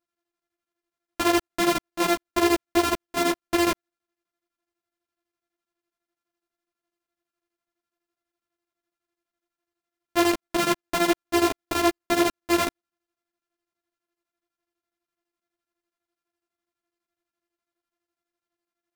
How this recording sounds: a buzz of ramps at a fixed pitch in blocks of 128 samples; chopped level 12 Hz, depth 65%, duty 65%; a shimmering, thickened sound

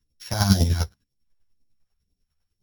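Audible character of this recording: a buzz of ramps at a fixed pitch in blocks of 8 samples; phasing stages 2, 2 Hz, lowest notch 250–1300 Hz; chopped level 10 Hz, depth 60%, duty 25%; a shimmering, thickened sound

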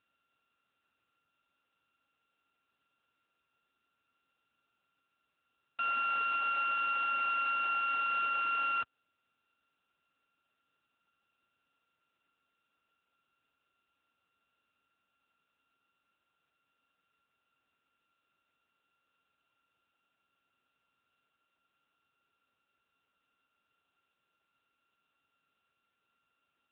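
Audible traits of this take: a buzz of ramps at a fixed pitch in blocks of 32 samples; AMR-NB

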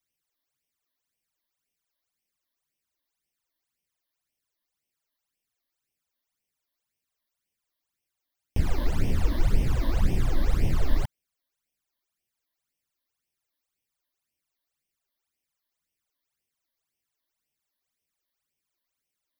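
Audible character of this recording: phasing stages 12, 1.9 Hz, lowest notch 130–1400 Hz

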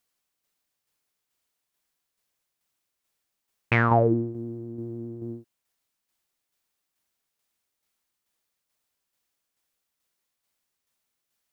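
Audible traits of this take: tremolo saw down 2.3 Hz, depth 45%

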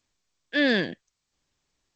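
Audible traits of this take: G.722

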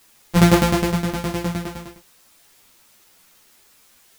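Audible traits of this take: a buzz of ramps at a fixed pitch in blocks of 256 samples; tremolo saw down 9.7 Hz, depth 85%; a quantiser's noise floor 10-bit, dither triangular; a shimmering, thickened sound

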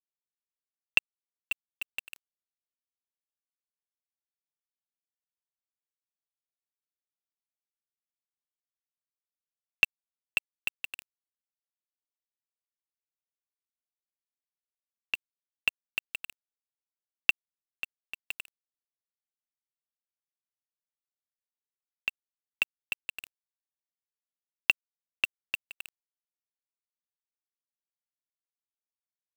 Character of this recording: a quantiser's noise floor 6-bit, dither none; chopped level 3.3 Hz, depth 65%, duty 80%

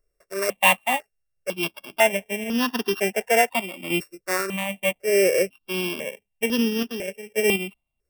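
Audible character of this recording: a buzz of ramps at a fixed pitch in blocks of 16 samples; random-step tremolo 4.1 Hz; notches that jump at a steady rate 2 Hz 840–2200 Hz

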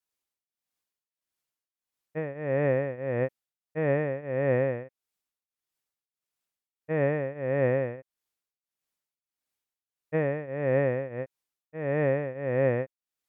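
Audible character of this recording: tremolo triangle 1.6 Hz, depth 90%; MP3

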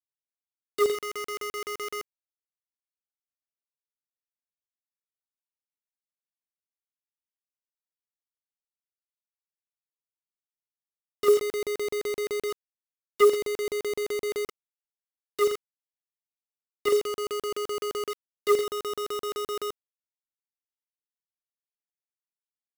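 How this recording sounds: chopped level 7.8 Hz, depth 60%, duty 70%; a quantiser's noise floor 6-bit, dither none

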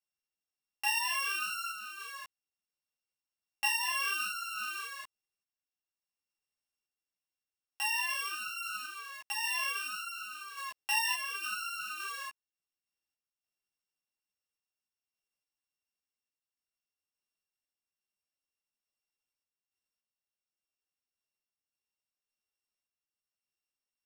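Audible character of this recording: a buzz of ramps at a fixed pitch in blocks of 16 samples; random-step tremolo 3.5 Hz; a shimmering, thickened sound

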